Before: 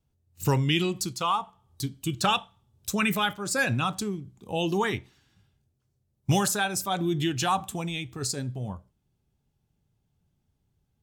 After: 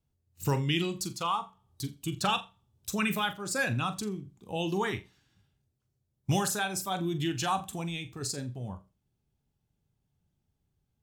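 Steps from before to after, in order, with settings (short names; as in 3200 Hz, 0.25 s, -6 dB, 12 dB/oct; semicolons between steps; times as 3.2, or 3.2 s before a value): flutter echo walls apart 7.2 m, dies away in 0.22 s; gain -4.5 dB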